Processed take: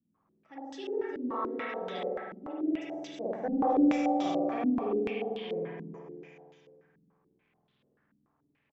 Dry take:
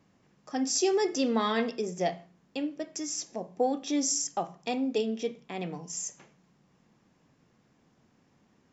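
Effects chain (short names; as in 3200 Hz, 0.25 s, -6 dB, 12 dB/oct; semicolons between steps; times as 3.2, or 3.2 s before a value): Doppler pass-by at 3.74, 18 m/s, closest 14 m; resonator 380 Hz, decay 0.65 s, mix 60%; crackle 100/s -66 dBFS; spring tank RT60 2.1 s, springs 48 ms, chirp 35 ms, DRR -8 dB; soft clip -23.5 dBFS, distortion -18 dB; on a send: feedback echo 0.206 s, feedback 51%, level -8 dB; on the sum: stepped low-pass 6.9 Hz 240–3500 Hz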